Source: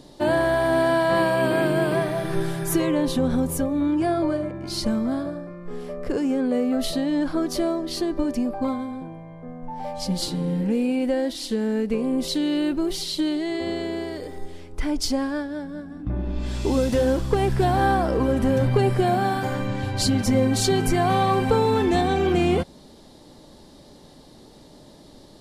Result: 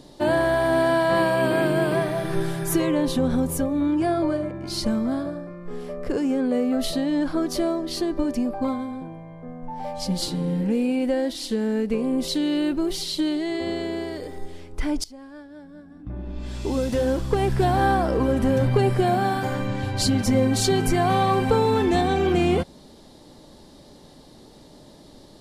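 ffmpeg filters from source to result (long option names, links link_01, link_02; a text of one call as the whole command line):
ffmpeg -i in.wav -filter_complex "[0:a]asplit=2[link_01][link_02];[link_01]atrim=end=15.04,asetpts=PTS-STARTPTS,afade=type=out:start_time=15.036:duration=0.004:curve=hsin:silence=0.0707946[link_03];[link_02]atrim=start=15.04,asetpts=PTS-STARTPTS,afade=type=in:duration=2.57:silence=0.0707946[link_04];[link_03][link_04]concat=n=2:v=0:a=1" out.wav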